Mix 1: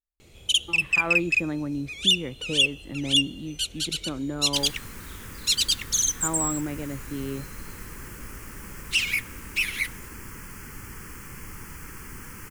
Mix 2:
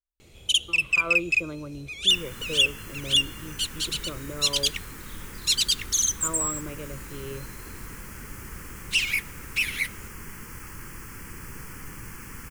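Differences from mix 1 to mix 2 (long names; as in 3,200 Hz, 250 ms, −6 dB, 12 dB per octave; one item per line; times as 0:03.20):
speech: add phaser with its sweep stopped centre 1,200 Hz, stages 8
second sound: entry −2.45 s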